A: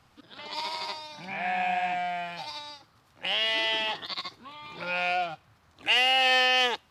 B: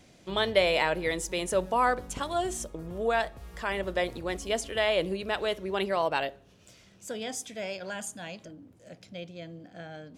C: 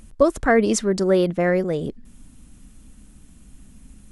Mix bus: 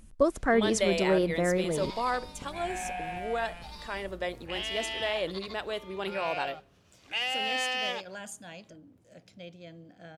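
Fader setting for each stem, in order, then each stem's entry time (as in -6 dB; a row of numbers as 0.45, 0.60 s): -8.5, -5.0, -7.5 dB; 1.25, 0.25, 0.00 s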